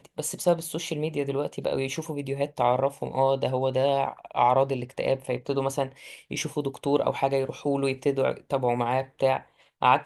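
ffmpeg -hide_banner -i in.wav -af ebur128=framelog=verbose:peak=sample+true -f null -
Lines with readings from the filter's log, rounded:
Integrated loudness:
  I:         -26.9 LUFS
  Threshold: -37.0 LUFS
Loudness range:
  LRA:         2.3 LU
  Threshold: -46.8 LUFS
  LRA low:   -28.0 LUFS
  LRA high:  -25.6 LUFS
Sample peak:
  Peak:       -7.4 dBFS
True peak:
  Peak:       -7.4 dBFS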